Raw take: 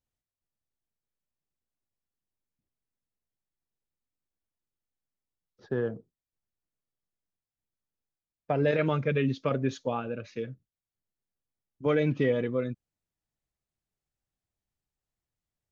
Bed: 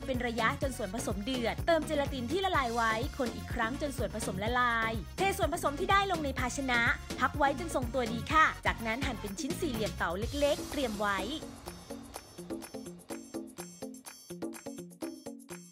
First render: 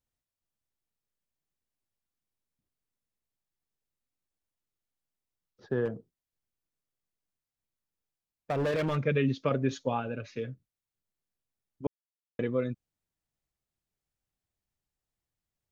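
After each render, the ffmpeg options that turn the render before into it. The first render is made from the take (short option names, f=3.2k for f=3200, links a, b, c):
-filter_complex "[0:a]asettb=1/sr,asplit=3[a][b][c];[a]atrim=end=5.854[d];[b]atrim=start=5.85:end=8.97,asetpts=PTS-STARTPTS,afade=t=in:d=0.004:c=qsin,afade=t=out:st=3.116:d=0.004:c=qsin,asoftclip=type=hard:threshold=-25.5dB[e];[c]atrim=start=8.966[f];[d][e]acrossfade=d=0.004:c1=hsin:c2=qsin[g];[g][f]acrossfade=d=0.004:c1=qsin:c2=hsin,asettb=1/sr,asplit=3[h][i][j];[h]atrim=end=9.704[k];[i]atrim=start=9.7:end=10.5,asetpts=PTS-STARTPTS,afade=t=in:d=0.004:c=qsin,afade=t=out:st=0.796:d=0.004:c=qsin,aecho=1:1:7.3:0.41,atrim=end_sample=35280[l];[j]atrim=start=10.496[m];[k][l]acrossfade=d=0.004:c1=hsin:c2=qsin[n];[n][m]acrossfade=d=0.004:c1=qsin:c2=hsin,asplit=3[o][p][q];[o]atrim=end=11.87,asetpts=PTS-STARTPTS,afade=t=out:st=11.866:d=0.004:c=hsin[r];[p]atrim=start=11.87:end=12.39,asetpts=PTS-STARTPTS,volume=0[s];[q]atrim=start=12.39,asetpts=PTS-STARTPTS,afade=t=in:d=0.004:c=hsin[t];[r][s][t]concat=n=3:v=0:a=1"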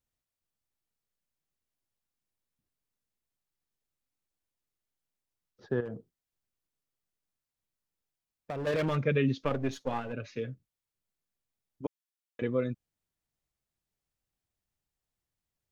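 -filter_complex "[0:a]asettb=1/sr,asplit=3[a][b][c];[a]atrim=end=5.804[d];[b]atrim=start=5.8:end=8.67,asetpts=PTS-STARTPTS,afade=t=in:d=0.004:c=qsin,afade=t=out:st=2.866:d=0.004:c=qsin,acompressor=threshold=-33dB:ratio=10:attack=3.2:release=140:knee=1:detection=peak[e];[c]atrim=start=8.666[f];[d][e]acrossfade=d=0.004:c1=hsin:c2=qsin[g];[g][f]acrossfade=d=0.004:c1=qsin:c2=hsin,asplit=3[h][i][j];[h]afade=t=out:st=9.42:d=0.02[k];[i]aeval=exprs='if(lt(val(0),0),0.447*val(0),val(0))':c=same,afade=t=in:st=9.42:d=0.02,afade=t=out:st=10.12:d=0.02[l];[j]afade=t=in:st=10.12:d=0.02[m];[k][l][m]amix=inputs=3:normalize=0,asettb=1/sr,asplit=3[n][o][p];[n]atrim=end=11.864[q];[o]atrim=start=11.86:end=12.42,asetpts=PTS-STARTPTS,afade=t=in:d=0.004:c=qsin,afade=t=out:st=0.556:d=0.004:c=qsin,highpass=f=1.3k:p=1[r];[p]atrim=start=12.416[s];[q][r]acrossfade=d=0.004:c1=hsin:c2=qsin[t];[t][s]acrossfade=d=0.004:c1=qsin:c2=hsin"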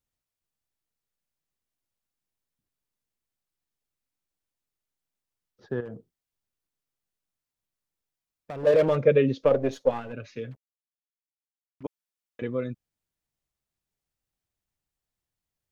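-filter_complex "[0:a]asettb=1/sr,asplit=3[a][b][c];[a]atrim=end=8.634[d];[b]atrim=start=8.63:end=9.91,asetpts=PTS-STARTPTS,afade=t=in:d=0.004:c=qsin,afade=t=out:st=1.276:d=0.004:c=qsin,equalizer=f=530:w=1.5:g=14[e];[c]atrim=start=9.906[f];[d][e]acrossfade=d=0.004:c1=hsin:c2=qsin[g];[g][f]acrossfade=d=0.004:c1=qsin:c2=hsin,asettb=1/sr,asplit=3[h][i][j];[h]atrim=end=10.514[k];[i]atrim=start=10.51:end=11.83,asetpts=PTS-STARTPTS,afade=t=in:d=0.004:c=qsin,afade=t=out:st=1.316:d=0.004:c=qsin,acrusher=bits=8:mix=0:aa=0.5[l];[j]atrim=start=11.826[m];[k][l]acrossfade=d=0.004:c1=hsin:c2=qsin[n];[n][m]acrossfade=d=0.004:c1=qsin:c2=hsin"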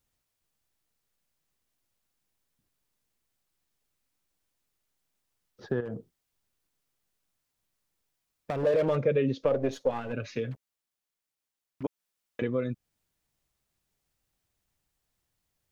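-filter_complex "[0:a]asplit=2[a][b];[b]alimiter=limit=-16.5dB:level=0:latency=1:release=15,volume=2.5dB[c];[a][c]amix=inputs=2:normalize=0,acompressor=threshold=-31dB:ratio=2"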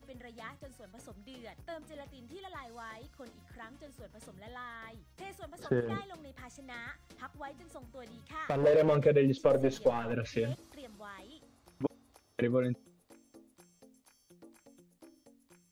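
-filter_complex "[1:a]volume=-17dB[a];[0:a][a]amix=inputs=2:normalize=0"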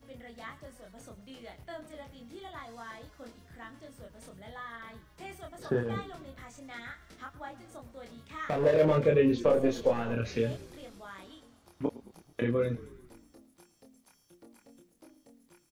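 -filter_complex "[0:a]asplit=2[a][b];[b]adelay=26,volume=-3dB[c];[a][c]amix=inputs=2:normalize=0,asplit=7[d][e][f][g][h][i][j];[e]adelay=109,afreqshift=-34,volume=-18dB[k];[f]adelay=218,afreqshift=-68,volume=-22.2dB[l];[g]adelay=327,afreqshift=-102,volume=-26.3dB[m];[h]adelay=436,afreqshift=-136,volume=-30.5dB[n];[i]adelay=545,afreqshift=-170,volume=-34.6dB[o];[j]adelay=654,afreqshift=-204,volume=-38.8dB[p];[d][k][l][m][n][o][p]amix=inputs=7:normalize=0"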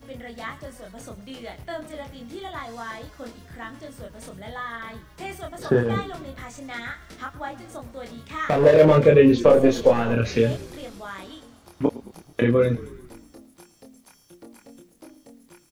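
-af "volume=10dB"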